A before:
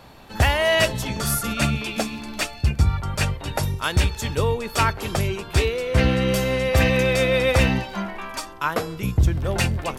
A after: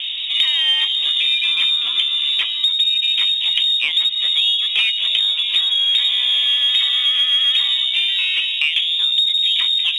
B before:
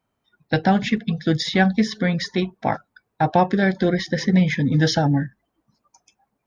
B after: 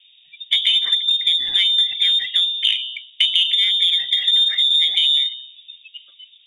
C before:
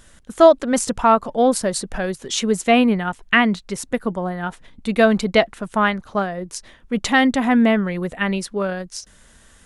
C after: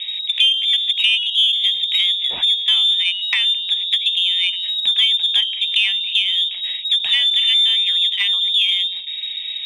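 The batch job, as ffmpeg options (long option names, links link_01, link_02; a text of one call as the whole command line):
ffmpeg -i in.wav -filter_complex "[0:a]bandreject=frequency=64.1:width_type=h:width=4,bandreject=frequency=128.2:width_type=h:width=4,bandreject=frequency=192.3:width_type=h:width=4,bandreject=frequency=256.4:width_type=h:width=4,bandreject=frequency=320.5:width_type=h:width=4,bandreject=frequency=384.6:width_type=h:width=4,bandreject=frequency=448.7:width_type=h:width=4,bandreject=frequency=512.8:width_type=h:width=4,bandreject=frequency=576.9:width_type=h:width=4,bandreject=frequency=641:width_type=h:width=4,bandreject=frequency=705.1:width_type=h:width=4,bandreject=frequency=769.2:width_type=h:width=4,bandreject=frequency=833.3:width_type=h:width=4,bandreject=frequency=897.4:width_type=h:width=4,bandreject=frequency=961.5:width_type=h:width=4,bandreject=frequency=1025.6:width_type=h:width=4,bandreject=frequency=1089.7:width_type=h:width=4,lowpass=frequency=3200:width_type=q:width=0.5098,lowpass=frequency=3200:width_type=q:width=0.6013,lowpass=frequency=3200:width_type=q:width=0.9,lowpass=frequency=3200:width_type=q:width=2.563,afreqshift=-3800,acompressor=threshold=-32dB:ratio=4,aexciter=amount=11.1:drive=9:freq=2300,acrossover=split=2500[link_01][link_02];[link_02]acompressor=threshold=-21dB:ratio=4:attack=1:release=60[link_03];[link_01][link_03]amix=inputs=2:normalize=0,volume=-1dB" out.wav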